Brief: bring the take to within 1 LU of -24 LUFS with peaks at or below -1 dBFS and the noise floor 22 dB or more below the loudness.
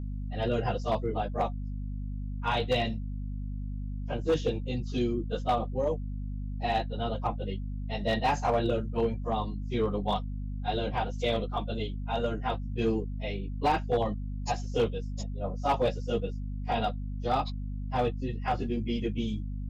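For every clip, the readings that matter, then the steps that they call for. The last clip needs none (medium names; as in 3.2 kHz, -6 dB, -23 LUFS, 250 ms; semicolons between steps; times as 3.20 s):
clipped samples 0.5%; clipping level -19.5 dBFS; hum 50 Hz; highest harmonic 250 Hz; hum level -32 dBFS; loudness -31.5 LUFS; peak level -19.5 dBFS; loudness target -24.0 LUFS
-> clip repair -19.5 dBFS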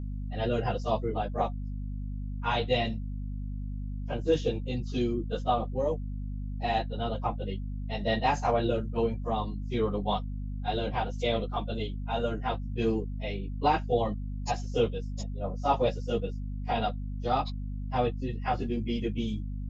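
clipped samples 0.0%; hum 50 Hz; highest harmonic 250 Hz; hum level -32 dBFS
-> de-hum 50 Hz, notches 5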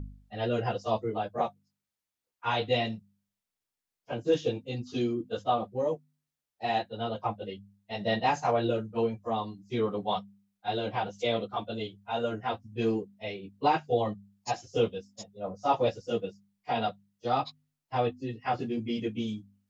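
hum not found; loudness -31.5 LUFS; peak level -13.5 dBFS; loudness target -24.0 LUFS
-> trim +7.5 dB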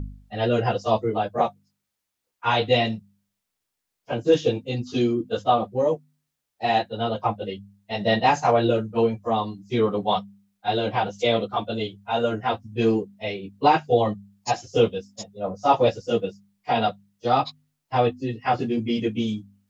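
loudness -24.0 LUFS; peak level -6.0 dBFS; noise floor -82 dBFS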